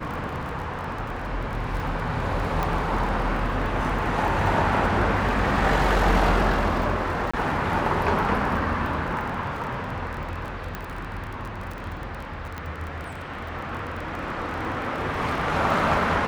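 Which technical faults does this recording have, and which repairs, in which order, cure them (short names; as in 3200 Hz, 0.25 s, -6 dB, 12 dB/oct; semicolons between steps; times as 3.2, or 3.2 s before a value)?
crackle 30/s -31 dBFS
2.63 pop -13 dBFS
7.31–7.33 gap 25 ms
10.75 pop -17 dBFS
12.58 pop -18 dBFS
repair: de-click; interpolate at 7.31, 25 ms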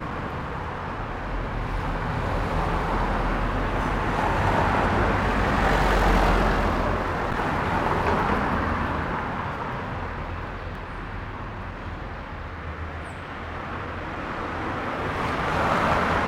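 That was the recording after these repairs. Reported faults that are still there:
10.75 pop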